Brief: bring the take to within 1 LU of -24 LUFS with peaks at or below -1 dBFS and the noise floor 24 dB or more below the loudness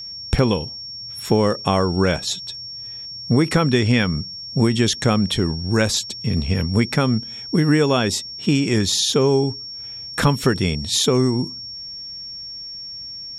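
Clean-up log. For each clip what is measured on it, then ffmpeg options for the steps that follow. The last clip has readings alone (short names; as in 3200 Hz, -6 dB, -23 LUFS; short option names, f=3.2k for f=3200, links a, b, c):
steady tone 5500 Hz; tone level -31 dBFS; loudness -19.5 LUFS; peak -5.0 dBFS; loudness target -24.0 LUFS
-> -af "bandreject=f=5.5k:w=30"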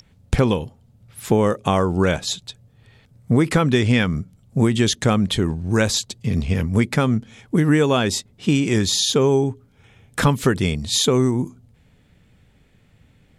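steady tone none; loudness -20.0 LUFS; peak -5.5 dBFS; loudness target -24.0 LUFS
-> -af "volume=-4dB"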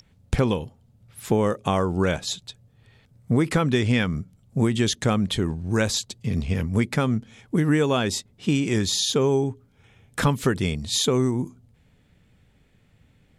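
loudness -24.0 LUFS; peak -9.5 dBFS; noise floor -61 dBFS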